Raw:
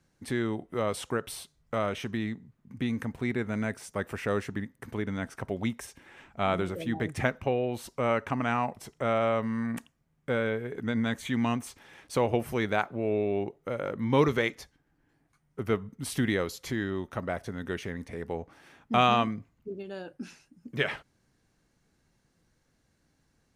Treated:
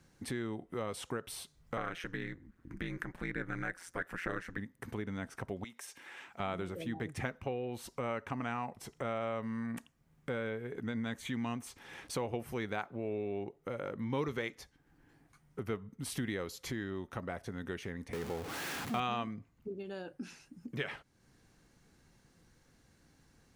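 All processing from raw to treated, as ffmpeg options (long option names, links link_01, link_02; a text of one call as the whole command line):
ffmpeg -i in.wav -filter_complex "[0:a]asettb=1/sr,asplit=3[link_01][link_02][link_03];[link_01]atrim=end=1.774[link_04];[link_02]atrim=start=1.77:end=4.58,asetpts=PTS-STARTPTS,afade=type=in:duration=0.004:curve=qsin,afade=type=out:start_time=2.806:duration=0.004:curve=qsin,equalizer=frequency=1600:width_type=o:width=0.67:gain=12,aphaser=in_gain=1:out_gain=1:delay=3:decay=0.28:speed=1.2:type=triangular,aeval=exprs='val(0)*sin(2*PI*87*n/s)':channel_layout=same[link_05];[link_03]atrim=start=4.576[link_06];[link_04][link_05]acrossfade=duration=0.004:curve1=hsin:curve2=qsin[link_07];[link_07][link_06]acrossfade=duration=0.004:curve1=qsin:curve2=hsin,asettb=1/sr,asplit=3[link_08][link_09][link_10];[link_08]atrim=end=5.644[link_11];[link_09]atrim=start=5.64:end=6.4,asetpts=PTS-STARTPTS,afade=type=in:duration=0.004:curve=qsin,afade=type=out:start_time=0.756:duration=0.004:curve=qsin,highpass=frequency=970:poles=1,acompressor=threshold=-49dB:ratio=1.5:attack=3.2:release=140:knee=1:detection=peak[link_12];[link_10]atrim=start=6.396[link_13];[link_11][link_12]acrossfade=duration=0.004:curve1=hsin:curve2=qsin[link_14];[link_14][link_13]acrossfade=duration=0.004:curve1=qsin:curve2=hsin,asettb=1/sr,asplit=3[link_15][link_16][link_17];[link_15]atrim=end=18.134[link_18];[link_16]atrim=start=18.13:end=19,asetpts=PTS-STARTPTS,afade=type=in:duration=0.004:curve=qsin,afade=type=out:start_time=0.866:duration=0.004:curve=qsin,aeval=exprs='val(0)+0.5*0.0282*sgn(val(0))':channel_layout=same,highpass=83[link_19];[link_17]atrim=start=18.996[link_20];[link_18][link_19]acrossfade=duration=0.004:curve1=hsin:curve2=qsin[link_21];[link_21][link_20]acrossfade=duration=0.004:curve1=qsin:curve2=hsin,bandreject=frequency=620:width=15,acompressor=threshold=-51dB:ratio=2,volume=5dB" out.wav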